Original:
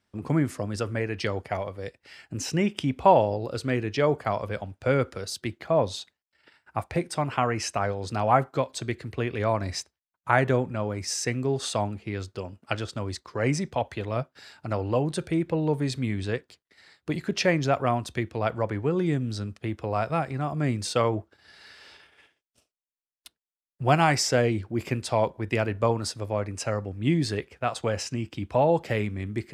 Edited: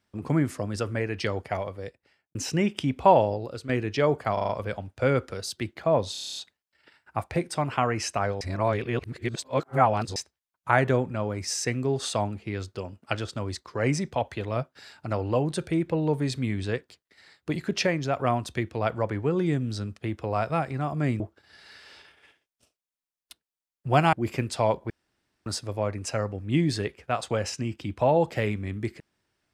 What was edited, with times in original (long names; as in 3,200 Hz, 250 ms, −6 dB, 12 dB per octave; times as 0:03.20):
0:01.68–0:02.35: fade out and dull
0:03.28–0:03.69: fade out, to −10 dB
0:04.33: stutter 0.04 s, 5 plays
0:05.96: stutter 0.03 s, 9 plays
0:08.01–0:09.76: reverse
0:17.47–0:17.79: clip gain −3.5 dB
0:20.80–0:21.15: remove
0:24.08–0:24.66: remove
0:25.43–0:25.99: fill with room tone